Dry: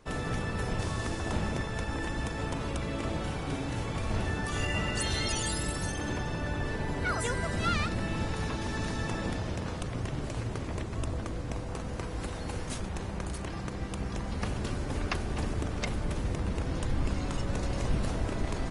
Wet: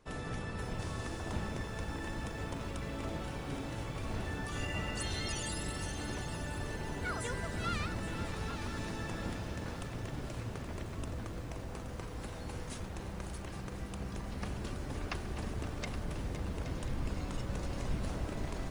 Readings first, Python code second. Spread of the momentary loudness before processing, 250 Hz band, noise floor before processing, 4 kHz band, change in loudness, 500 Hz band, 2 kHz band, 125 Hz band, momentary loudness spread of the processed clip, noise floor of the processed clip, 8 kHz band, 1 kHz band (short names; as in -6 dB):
6 LU, -6.5 dB, -37 dBFS, -6.5 dB, -6.5 dB, -6.5 dB, -6.5 dB, -6.5 dB, 6 LU, -43 dBFS, -6.0 dB, -6.5 dB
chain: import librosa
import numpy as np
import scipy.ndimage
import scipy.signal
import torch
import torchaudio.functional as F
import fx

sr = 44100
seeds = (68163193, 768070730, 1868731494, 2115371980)

p1 = x + fx.echo_single(x, sr, ms=822, db=-11.5, dry=0)
p2 = fx.echo_crushed(p1, sr, ms=520, feedback_pct=80, bits=8, wet_db=-12.5)
y = p2 * librosa.db_to_amplitude(-7.0)